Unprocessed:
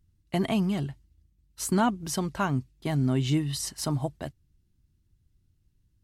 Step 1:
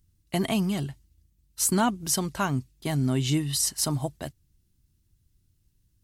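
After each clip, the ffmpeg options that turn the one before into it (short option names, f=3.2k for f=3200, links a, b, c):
-af "highshelf=f=4.5k:g=11"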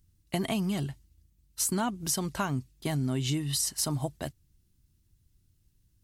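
-af "acompressor=threshold=-26dB:ratio=5"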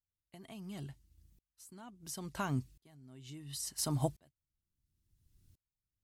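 -af "aeval=exprs='val(0)*pow(10,-37*if(lt(mod(-0.72*n/s,1),2*abs(-0.72)/1000),1-mod(-0.72*n/s,1)/(2*abs(-0.72)/1000),(mod(-0.72*n/s,1)-2*abs(-0.72)/1000)/(1-2*abs(-0.72)/1000))/20)':c=same,volume=3dB"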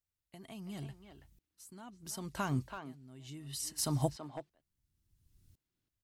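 -filter_complex "[0:a]asplit=2[a][b];[b]adelay=330,highpass=300,lowpass=3.4k,asoftclip=type=hard:threshold=-28dB,volume=-7dB[c];[a][c]amix=inputs=2:normalize=0,volume=1dB"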